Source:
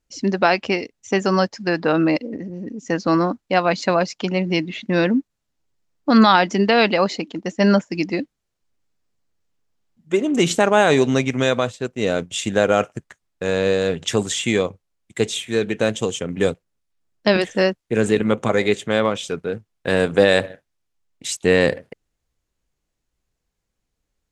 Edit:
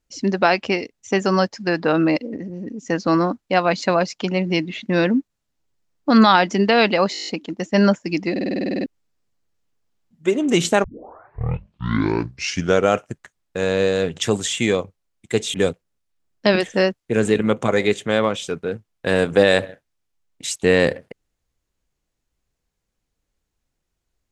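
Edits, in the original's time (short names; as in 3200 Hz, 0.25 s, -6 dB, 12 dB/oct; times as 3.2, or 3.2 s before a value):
7.13 stutter 0.02 s, 8 plays
8.17 stutter in place 0.05 s, 11 plays
10.7 tape start 2.08 s
15.4–16.35 cut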